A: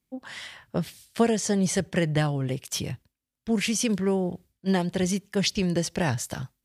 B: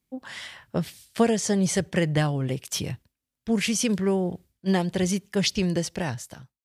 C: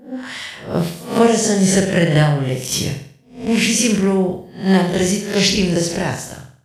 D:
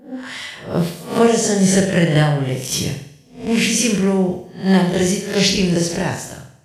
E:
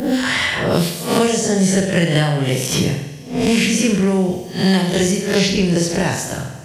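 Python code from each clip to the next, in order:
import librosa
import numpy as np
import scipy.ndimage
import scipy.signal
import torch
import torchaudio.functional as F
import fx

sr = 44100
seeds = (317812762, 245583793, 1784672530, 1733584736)

y1 = fx.fade_out_tail(x, sr, length_s=1.0)
y1 = y1 * 10.0 ** (1.0 / 20.0)
y2 = fx.spec_swells(y1, sr, rise_s=0.41)
y2 = fx.room_flutter(y2, sr, wall_m=8.1, rt60_s=0.51)
y2 = y2 * 10.0 ** (6.0 / 20.0)
y3 = fx.rev_double_slope(y2, sr, seeds[0], early_s=0.42, late_s=1.6, knee_db=-16, drr_db=11.0)
y3 = y3 * 10.0 ** (-1.0 / 20.0)
y4 = fx.band_squash(y3, sr, depth_pct=100)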